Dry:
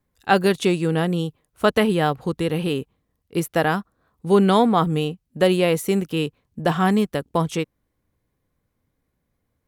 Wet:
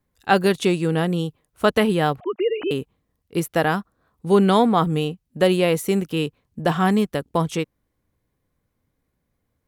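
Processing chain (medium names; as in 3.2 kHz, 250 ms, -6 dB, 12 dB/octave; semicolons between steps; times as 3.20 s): 2.20–2.71 s: formants replaced by sine waves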